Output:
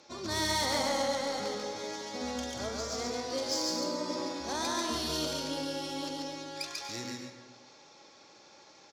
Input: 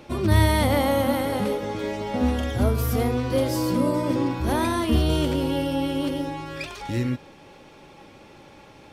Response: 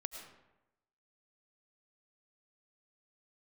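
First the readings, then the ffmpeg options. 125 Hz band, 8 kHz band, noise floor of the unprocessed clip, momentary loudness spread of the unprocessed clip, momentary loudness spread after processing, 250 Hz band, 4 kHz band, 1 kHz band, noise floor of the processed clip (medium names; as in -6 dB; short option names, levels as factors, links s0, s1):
-22.5 dB, +1.5 dB, -49 dBFS, 9 LU, 10 LU, -14.0 dB, 0.0 dB, -7.5 dB, -57 dBFS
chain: -filter_complex "[0:a]highpass=f=740:p=1,highshelf=f=5700:g=-6.5,aresample=16000,aresample=44100,adynamicsmooth=sensitivity=4:basefreq=5400,asplit=2[s0][s1];[1:a]atrim=start_sample=2205,adelay=141[s2];[s1][s2]afir=irnorm=-1:irlink=0,volume=1.06[s3];[s0][s3]amix=inputs=2:normalize=0,aexciter=amount=7.7:drive=7.6:freq=4300,volume=0.422"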